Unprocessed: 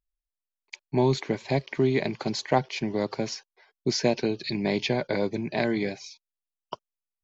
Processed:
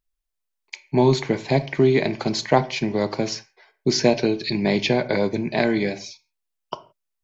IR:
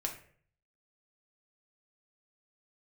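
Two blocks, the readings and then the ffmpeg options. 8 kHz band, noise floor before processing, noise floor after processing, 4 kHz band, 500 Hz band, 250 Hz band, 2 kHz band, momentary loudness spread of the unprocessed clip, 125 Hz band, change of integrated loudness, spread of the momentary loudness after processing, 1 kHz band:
n/a, under -85 dBFS, -80 dBFS, +5.5 dB, +6.0 dB, +5.5 dB, +5.5 dB, 18 LU, +5.5 dB, +5.5 dB, 19 LU, +5.0 dB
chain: -filter_complex "[0:a]asplit=2[a][b];[1:a]atrim=start_sample=2205,afade=t=out:st=0.23:d=0.01,atrim=end_sample=10584[c];[b][c]afir=irnorm=-1:irlink=0,volume=-5.5dB[d];[a][d]amix=inputs=2:normalize=0,volume=2dB"

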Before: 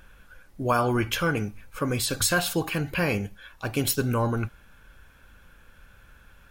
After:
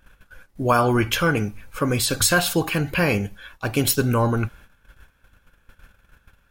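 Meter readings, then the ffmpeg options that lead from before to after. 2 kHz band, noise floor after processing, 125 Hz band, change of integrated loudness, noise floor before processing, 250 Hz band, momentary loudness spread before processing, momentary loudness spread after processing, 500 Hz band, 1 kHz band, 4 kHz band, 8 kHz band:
+5.0 dB, -62 dBFS, +5.0 dB, +5.0 dB, -55 dBFS, +5.0 dB, 10 LU, 10 LU, +5.0 dB, +5.0 dB, +5.0 dB, +5.0 dB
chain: -af "agate=range=-13dB:threshold=-49dB:ratio=16:detection=peak,volume=5dB"

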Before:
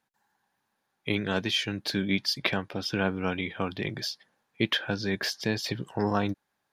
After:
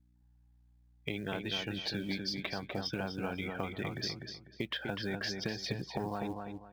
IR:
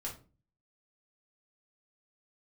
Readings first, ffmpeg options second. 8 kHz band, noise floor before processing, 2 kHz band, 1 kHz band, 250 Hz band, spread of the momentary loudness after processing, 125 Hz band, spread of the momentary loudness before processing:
-8.5 dB, -79 dBFS, -8.5 dB, -7.0 dB, -8.0 dB, 5 LU, -7.0 dB, 6 LU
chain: -filter_complex "[0:a]afftdn=nr=21:nf=-40,equalizer=f=740:t=o:w=0.46:g=5,alimiter=limit=-15dB:level=0:latency=1:release=261,acompressor=threshold=-34dB:ratio=5,aeval=exprs='val(0)+0.000501*(sin(2*PI*60*n/s)+sin(2*PI*2*60*n/s)/2+sin(2*PI*3*60*n/s)/3+sin(2*PI*4*60*n/s)/4+sin(2*PI*5*60*n/s)/5)':c=same,acrusher=bits=7:mode=log:mix=0:aa=0.000001,asplit=2[a][b];[b]adelay=248,lowpass=f=3.6k:p=1,volume=-4.5dB,asplit=2[c][d];[d]adelay=248,lowpass=f=3.6k:p=1,volume=0.28,asplit=2[e][f];[f]adelay=248,lowpass=f=3.6k:p=1,volume=0.28,asplit=2[g][h];[h]adelay=248,lowpass=f=3.6k:p=1,volume=0.28[i];[a][c][e][g][i]amix=inputs=5:normalize=0"

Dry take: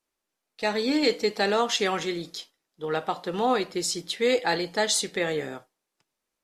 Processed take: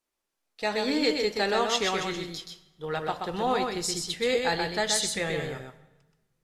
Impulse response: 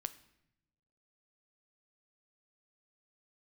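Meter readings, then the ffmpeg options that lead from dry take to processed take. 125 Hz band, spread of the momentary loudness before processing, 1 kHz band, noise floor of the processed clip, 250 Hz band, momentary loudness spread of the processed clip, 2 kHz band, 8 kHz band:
+1.5 dB, 11 LU, -1.0 dB, -83 dBFS, -2.5 dB, 12 LU, -0.5 dB, -0.5 dB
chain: -filter_complex "[0:a]asubboost=boost=7.5:cutoff=100,asplit=2[a][b];[1:a]atrim=start_sample=2205,asetrate=29988,aresample=44100,adelay=127[c];[b][c]afir=irnorm=-1:irlink=0,volume=-4dB[d];[a][d]amix=inputs=2:normalize=0,volume=-2dB"

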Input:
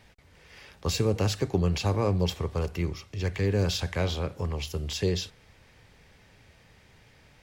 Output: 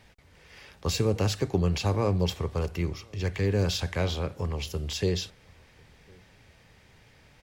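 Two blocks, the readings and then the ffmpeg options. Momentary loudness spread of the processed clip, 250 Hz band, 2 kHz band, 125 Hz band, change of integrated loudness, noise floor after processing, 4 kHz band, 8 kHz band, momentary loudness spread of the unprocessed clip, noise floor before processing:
7 LU, 0.0 dB, 0.0 dB, 0.0 dB, 0.0 dB, -58 dBFS, 0.0 dB, 0.0 dB, 7 LU, -58 dBFS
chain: -filter_complex "[0:a]asplit=2[a][b];[b]adelay=1050,volume=-29dB,highshelf=f=4k:g=-23.6[c];[a][c]amix=inputs=2:normalize=0"

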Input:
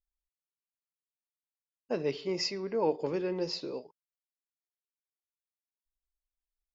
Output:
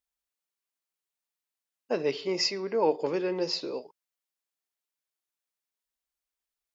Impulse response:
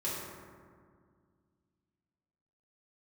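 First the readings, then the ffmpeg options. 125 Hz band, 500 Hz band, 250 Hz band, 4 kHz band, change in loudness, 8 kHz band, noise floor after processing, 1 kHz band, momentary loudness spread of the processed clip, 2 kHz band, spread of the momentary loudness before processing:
-1.5 dB, +3.5 dB, +2.0 dB, +5.5 dB, +4.0 dB, n/a, under -85 dBFS, +5.0 dB, 7 LU, +5.5 dB, 7 LU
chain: -af "highpass=f=330:p=1,volume=5.5dB"

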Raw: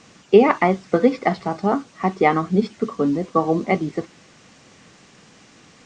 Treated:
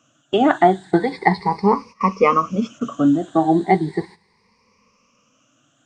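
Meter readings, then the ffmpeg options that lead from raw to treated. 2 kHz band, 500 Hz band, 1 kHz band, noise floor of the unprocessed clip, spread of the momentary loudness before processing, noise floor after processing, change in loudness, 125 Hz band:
+0.5 dB, -1.0 dB, +4.0 dB, -51 dBFS, 9 LU, -63 dBFS, +1.0 dB, +1.0 dB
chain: -af "afftfilt=real='re*pow(10,20/40*sin(2*PI*(0.87*log(max(b,1)*sr/1024/100)/log(2)-(0.36)*(pts-256)/sr)))':imag='im*pow(10,20/40*sin(2*PI*(0.87*log(max(b,1)*sr/1024/100)/log(2)-(0.36)*(pts-256)/sr)))':win_size=1024:overlap=0.75,agate=range=-14dB:threshold=-34dB:ratio=16:detection=peak,equalizer=f=990:t=o:w=0.3:g=8,volume=-2.5dB"

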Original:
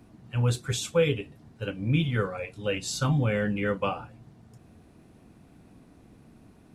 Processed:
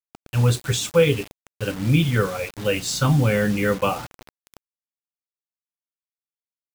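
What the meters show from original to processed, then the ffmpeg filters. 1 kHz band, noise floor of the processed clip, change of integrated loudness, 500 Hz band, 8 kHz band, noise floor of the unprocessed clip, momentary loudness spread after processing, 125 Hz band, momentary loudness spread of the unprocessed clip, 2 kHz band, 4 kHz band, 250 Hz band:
+6.5 dB, under -85 dBFS, +6.5 dB, +6.5 dB, +7.5 dB, -56 dBFS, 11 LU, +6.5 dB, 12 LU, +6.5 dB, +7.0 dB, +6.5 dB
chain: -af "acrusher=bits=6:mix=0:aa=0.000001,volume=6.5dB"

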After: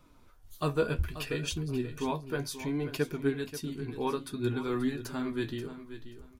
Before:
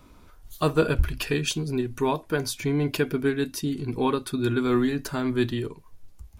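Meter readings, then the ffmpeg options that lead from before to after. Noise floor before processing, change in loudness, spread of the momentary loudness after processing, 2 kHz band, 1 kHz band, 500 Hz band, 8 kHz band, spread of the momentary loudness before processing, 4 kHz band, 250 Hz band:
-52 dBFS, -7.5 dB, 7 LU, -7.5 dB, -7.5 dB, -7.0 dB, -8.0 dB, 5 LU, -7.5 dB, -7.5 dB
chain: -af "flanger=delay=5.5:depth=9.4:regen=43:speed=0.64:shape=triangular,aecho=1:1:533|1066|1599:0.237|0.0545|0.0125,volume=-4dB"

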